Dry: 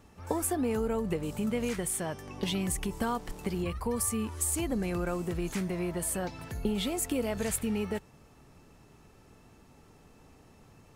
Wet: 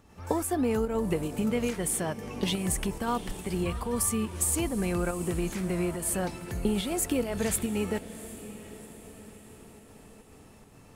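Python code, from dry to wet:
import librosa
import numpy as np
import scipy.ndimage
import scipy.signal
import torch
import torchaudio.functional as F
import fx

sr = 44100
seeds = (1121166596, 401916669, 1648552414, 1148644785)

y = fx.volume_shaper(x, sr, bpm=141, per_beat=1, depth_db=-6, release_ms=97.0, shape='slow start')
y = fx.echo_diffused(y, sr, ms=746, feedback_pct=52, wet_db=-14.5)
y = y * 10.0 ** (3.0 / 20.0)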